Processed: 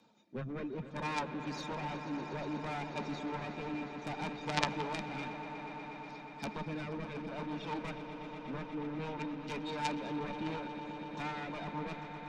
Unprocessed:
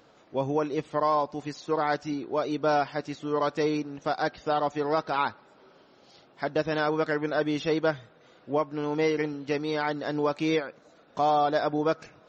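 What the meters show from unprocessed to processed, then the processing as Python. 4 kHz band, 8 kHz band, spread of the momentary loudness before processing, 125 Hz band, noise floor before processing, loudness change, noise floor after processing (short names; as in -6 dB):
-6.0 dB, n/a, 6 LU, -5.0 dB, -58 dBFS, -11.5 dB, -48 dBFS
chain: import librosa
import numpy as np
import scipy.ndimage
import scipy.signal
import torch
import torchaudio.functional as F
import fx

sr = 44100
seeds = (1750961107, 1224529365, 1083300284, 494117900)

p1 = np.minimum(x, 2.0 * 10.0 ** (-27.5 / 20.0) - x)
p2 = fx.env_lowpass_down(p1, sr, base_hz=2700.0, full_db=-28.0)
p3 = fx.dereverb_blind(p2, sr, rt60_s=0.99)
p4 = fx.high_shelf(p3, sr, hz=5900.0, db=10.0)
p5 = fx.rider(p4, sr, range_db=10, speed_s=0.5)
p6 = 10.0 ** (-21.5 / 20.0) * np.tanh(p5 / 10.0 ** (-21.5 / 20.0))
p7 = fx.rotary(p6, sr, hz=0.6)
p8 = fx.small_body(p7, sr, hz=(210.0, 900.0, 2400.0, 3700.0), ring_ms=65, db=16)
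p9 = p8 + fx.echo_swell(p8, sr, ms=121, loudest=5, wet_db=-12.5, dry=0)
p10 = fx.cheby_harmonics(p9, sr, harmonics=(3, 5), levels_db=(-6, -15), full_scale_db=-13.5)
p11 = fx.band_widen(p10, sr, depth_pct=40)
y = p11 * 10.0 ** (2.0 / 20.0)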